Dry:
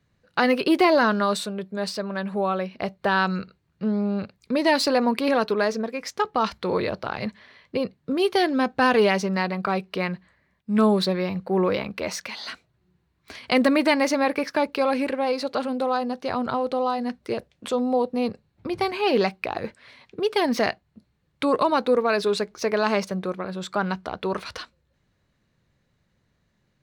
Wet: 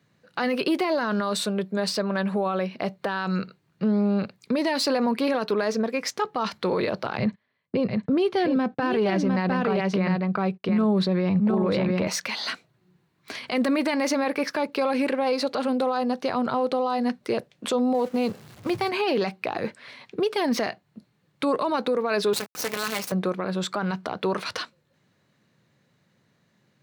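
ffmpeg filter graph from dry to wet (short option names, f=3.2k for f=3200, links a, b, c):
-filter_complex "[0:a]asettb=1/sr,asplit=3[a][b][c];[a]atrim=end=7.174[d];[b]atrim=start=7.17:end=12.07,asetpts=PTS-STARTPTS,afade=t=in:d=0.004:c=qsin,afade=t=out:st=4.896:d=0.004:c=qsin,agate=range=-28dB:threshold=-45dB:ratio=16:release=100:detection=peak,aemphasis=mode=reproduction:type=bsi,aecho=1:1:705:0.562,atrim=end_sample=216090[e];[c]atrim=start=12.066[f];[d][e]acrossfade=d=0.004:c1=hsin:c2=qsin[g];[g][f]acrossfade=d=0.004:c1=qsin:c2=hsin,asettb=1/sr,asplit=3[h][i][j];[h]atrim=end=17.944[k];[i]atrim=start=17.94:end=18.89,asetpts=PTS-STARTPTS,afade=t=in:d=0.004:c=qsin,afade=t=out:st=0.946:d=0.004:c=qsin,aeval=exprs='val(0)+0.5*0.0126*sgn(val(0))':c=same,agate=range=-8dB:threshold=-31dB:ratio=16:release=100:detection=peak,asubboost=boost=11.5:cutoff=120[l];[j]atrim=start=18.886[m];[k][l]acrossfade=d=0.004:c1=hsin:c2=qsin[n];[n][m]acrossfade=d=0.004:c1=qsin:c2=hsin,asettb=1/sr,asplit=3[o][p][q];[o]atrim=end=22.334[r];[p]atrim=start=22.33:end=23.12,asetpts=PTS-STARTPTS,afade=t=in:d=0.004:c=qsin,afade=t=out:st=0.786:d=0.004:c=qsin,aemphasis=mode=production:type=bsi,aecho=1:1:4:0.78,atrim=end_sample=34839,acrusher=bits=4:dc=4:mix=0:aa=0.000001[s];[q]atrim=start=23.116[t];[r][s]acrossfade=d=0.004:c1=hsin:c2=qsin[u];[u][t]acrossfade=d=0.004:c1=qsin:c2=hsin,highpass=f=120:w=0.5412,highpass=f=120:w=1.3066,acompressor=threshold=-26dB:ratio=2,alimiter=limit=-21dB:level=0:latency=1:release=13,volume=5dB"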